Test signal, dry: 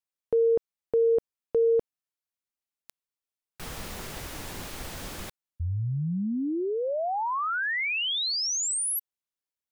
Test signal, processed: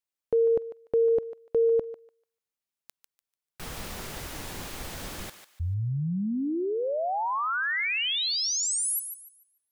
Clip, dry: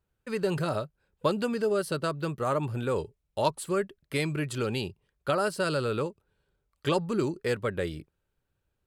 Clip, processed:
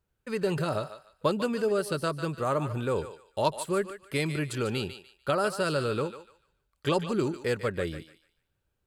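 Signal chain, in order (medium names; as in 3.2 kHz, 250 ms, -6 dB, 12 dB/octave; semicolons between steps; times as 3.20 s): thinning echo 147 ms, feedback 28%, high-pass 840 Hz, level -9 dB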